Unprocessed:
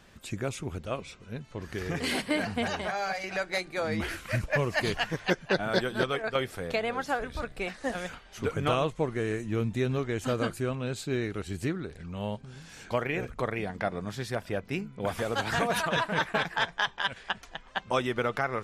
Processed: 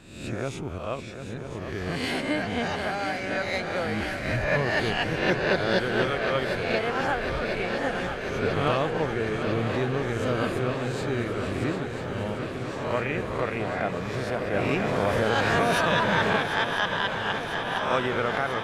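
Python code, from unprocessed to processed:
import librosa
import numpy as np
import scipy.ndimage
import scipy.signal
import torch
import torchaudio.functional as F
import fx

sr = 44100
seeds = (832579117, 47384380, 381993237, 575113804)

y = fx.spec_swells(x, sr, rise_s=0.77)
y = fx.lowpass(y, sr, hz=3700.0, slope=6)
y = fx.quant_dither(y, sr, seeds[0], bits=12, dither='none', at=(11.96, 12.38))
y = fx.echo_swing(y, sr, ms=995, ratio=3, feedback_pct=77, wet_db=-9.5)
y = fx.env_flatten(y, sr, amount_pct=50, at=(14.53, 16.35), fade=0.02)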